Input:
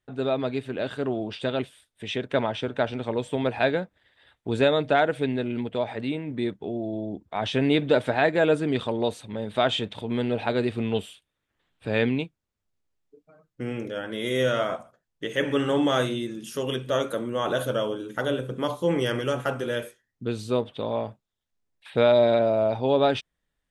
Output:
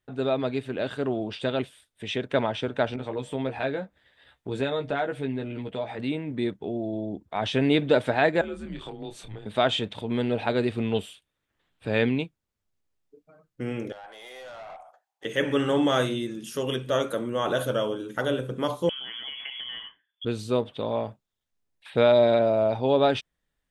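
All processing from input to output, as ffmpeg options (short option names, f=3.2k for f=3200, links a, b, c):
-filter_complex "[0:a]asettb=1/sr,asplit=3[a][b][c];[a]atrim=end=2.964[d];[b]atrim=start=2.96:end=5.99,asetpts=PTS-STARTPTS,afade=t=in:d=0.004:c=qsin,afade=t=out:st=3.026:d=0.004:c=qsin,asplit=2[e][f];[f]adelay=15,volume=-5dB[g];[e][g]amix=inputs=2:normalize=0,atrim=end_sample=133623,acompressor=threshold=-35dB:ratio=1.5:attack=3.2:release=140:knee=1:detection=peak,adynamicequalizer=threshold=0.00708:dfrequency=2100:dqfactor=0.7:tfrequency=2100:tqfactor=0.7:attack=5:release=100:ratio=0.375:range=2:mode=cutabove:tftype=highshelf[h];[c]atrim=start=5.986[i];[d][h]acrossfade=d=0.004:c1=hsin:c2=qsin[j];[j][i]acrossfade=d=0.004:c1=qsin:c2=hsin,asettb=1/sr,asplit=3[k][l][m];[k]atrim=end=8.414[n];[l]atrim=start=8.41:end=9.46,asetpts=PTS-STARTPTS,afade=t=in:d=0.004:c=qsin,afade=t=out:st=1.046:d=0.004:c=qsin,afreqshift=-98,acompressor=threshold=-38dB:ratio=3:attack=3.2:release=140:knee=1:detection=peak,asplit=2[o][p];[p]adelay=27,volume=-5.5dB[q];[o][q]amix=inputs=2:normalize=0,atrim=end_sample=46305[r];[m]atrim=start=9.456[s];[n][r]acrossfade=d=0.004:c1=hsin:c2=qsin[t];[t][s]acrossfade=d=0.004:c1=qsin:c2=hsin,asettb=1/sr,asplit=3[u][v][w];[u]atrim=end=13.924[x];[v]atrim=start=13.92:end=15.25,asetpts=PTS-STARTPTS,afade=t=in:d=0.004:c=qsin,afade=t=out:st=1.326:d=0.004:c=qsin,highpass=f=780:t=q:w=9.6,acompressor=threshold=-47dB:ratio=2:attack=3.2:release=140:knee=1:detection=peak,aeval=exprs='(tanh(79.4*val(0)+0.1)-tanh(0.1))/79.4':c=same[y];[w]atrim=start=15.246[z];[x][y]acrossfade=d=0.004:c1=hsin:c2=qsin[aa];[aa][z]acrossfade=d=0.004:c1=qsin:c2=hsin,asettb=1/sr,asplit=3[ab][ac][ad];[ab]atrim=end=18.894[ae];[ac]atrim=start=18.89:end=20.25,asetpts=PTS-STARTPTS,afade=t=in:d=0.004:c=qsin,afade=t=out:st=1.356:d=0.004:c=qsin,acompressor=threshold=-32dB:ratio=16:attack=3.2:release=140:knee=1:detection=peak,lowpass=f=3k:t=q:w=0.5098,lowpass=f=3k:t=q:w=0.6013,lowpass=f=3k:t=q:w=0.9,lowpass=f=3k:t=q:w=2.563,afreqshift=-3500[af];[ad]atrim=start=20.246[ag];[ae][af]acrossfade=d=0.004:c1=hsin:c2=qsin[ah];[ah][ag]acrossfade=d=0.004:c1=qsin:c2=hsin"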